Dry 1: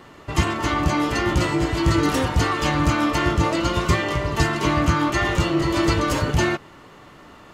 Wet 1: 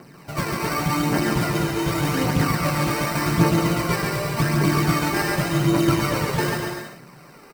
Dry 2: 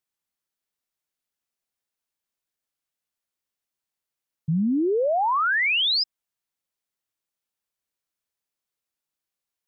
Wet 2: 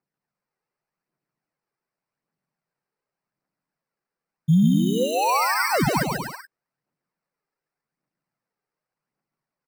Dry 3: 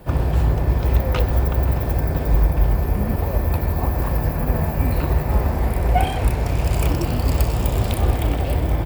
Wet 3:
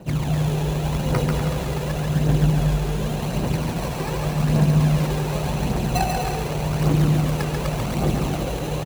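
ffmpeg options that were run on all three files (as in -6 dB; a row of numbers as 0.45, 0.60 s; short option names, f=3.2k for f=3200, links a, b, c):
-filter_complex "[0:a]acrusher=samples=13:mix=1:aa=0.000001,aphaser=in_gain=1:out_gain=1:delay=2.6:decay=0.56:speed=0.87:type=triangular,lowshelf=f=110:t=q:w=3:g=-9.5,asplit=2[a][b];[b]aecho=0:1:140|245|323.8|382.8|427.1:0.631|0.398|0.251|0.158|0.1[c];[a][c]amix=inputs=2:normalize=0,volume=-5dB"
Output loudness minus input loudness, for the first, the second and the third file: -0.5, +1.0, -1.5 LU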